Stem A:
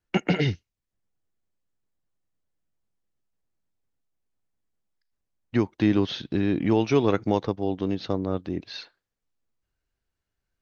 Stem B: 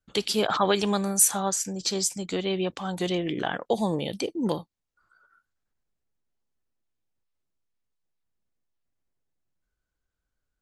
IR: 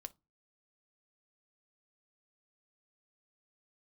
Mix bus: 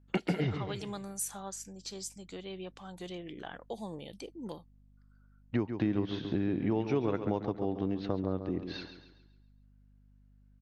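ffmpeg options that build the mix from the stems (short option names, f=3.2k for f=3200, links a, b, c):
-filter_complex "[0:a]lowpass=f=1.7k:p=1,volume=1dB,asplit=2[a][b];[b]volume=-10.5dB[c];[1:a]aeval=exprs='val(0)+0.00562*(sin(2*PI*50*n/s)+sin(2*PI*2*50*n/s)/2+sin(2*PI*3*50*n/s)/3+sin(2*PI*4*50*n/s)/4+sin(2*PI*5*50*n/s)/5)':c=same,volume=-15dB[d];[c]aecho=0:1:137|274|411|548|685|822:1|0.4|0.16|0.064|0.0256|0.0102[e];[a][d][e]amix=inputs=3:normalize=0,acompressor=threshold=-31dB:ratio=2.5"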